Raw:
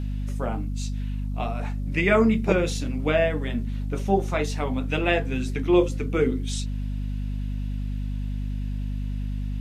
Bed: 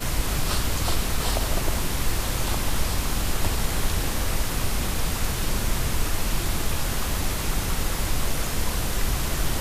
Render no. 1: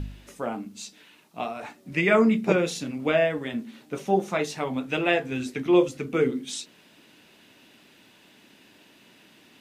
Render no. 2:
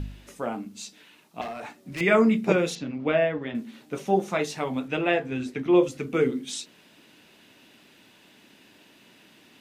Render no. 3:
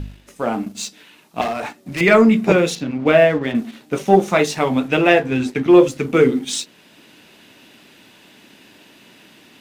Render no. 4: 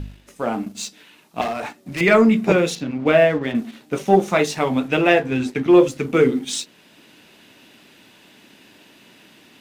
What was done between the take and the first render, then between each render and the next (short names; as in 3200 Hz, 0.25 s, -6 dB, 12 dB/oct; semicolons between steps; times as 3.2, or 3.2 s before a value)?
de-hum 50 Hz, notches 5
1.41–2.01 overloaded stage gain 30.5 dB; 2.75–3.55 air absorption 190 m; 4.88–5.83 high shelf 3900 Hz -9 dB
sample leveller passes 1; AGC gain up to 9.5 dB
gain -2 dB